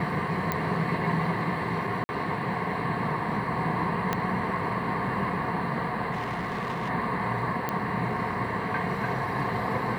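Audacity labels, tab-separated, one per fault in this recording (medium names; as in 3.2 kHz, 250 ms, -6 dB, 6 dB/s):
0.520000	0.520000	pop -12 dBFS
2.040000	2.090000	dropout 50 ms
4.130000	4.130000	pop -11 dBFS
6.110000	6.900000	clipped -27 dBFS
7.690000	7.690000	pop -14 dBFS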